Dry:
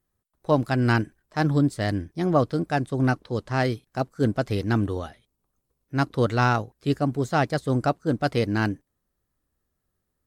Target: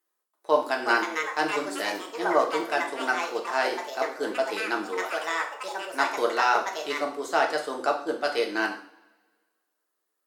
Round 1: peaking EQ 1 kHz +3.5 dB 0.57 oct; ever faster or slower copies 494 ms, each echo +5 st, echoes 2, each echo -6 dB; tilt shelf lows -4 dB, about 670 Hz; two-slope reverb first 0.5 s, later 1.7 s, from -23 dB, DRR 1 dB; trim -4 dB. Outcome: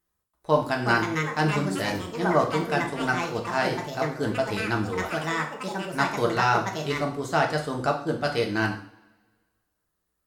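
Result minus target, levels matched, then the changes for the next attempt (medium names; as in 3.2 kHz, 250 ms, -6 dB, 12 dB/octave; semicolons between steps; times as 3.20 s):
250 Hz band +5.0 dB
add first: high-pass 320 Hz 24 dB/octave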